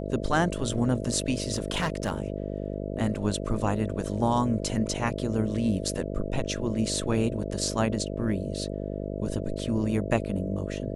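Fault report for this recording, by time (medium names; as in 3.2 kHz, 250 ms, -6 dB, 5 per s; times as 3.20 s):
buzz 50 Hz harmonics 13 -33 dBFS
1.54–2.12 s: clipped -21.5 dBFS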